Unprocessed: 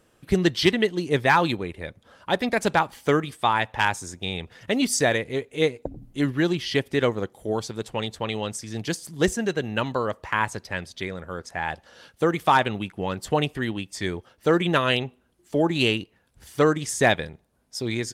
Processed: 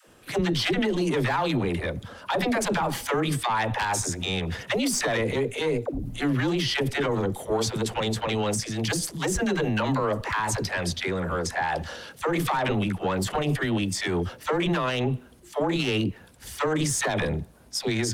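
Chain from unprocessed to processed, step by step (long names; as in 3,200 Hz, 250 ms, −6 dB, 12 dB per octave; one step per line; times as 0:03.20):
one-sided soft clipper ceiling −17.5 dBFS
in parallel at +1.5 dB: downward compressor, threshold −32 dBFS, peak gain reduction 15.5 dB
on the sum: dynamic equaliser 880 Hz, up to +4 dB, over −31 dBFS, Q 0.75
transient designer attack −1 dB, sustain +8 dB
all-pass dispersion lows, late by 83 ms, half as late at 380 Hz
brickwall limiter −17 dBFS, peak gain reduction 12 dB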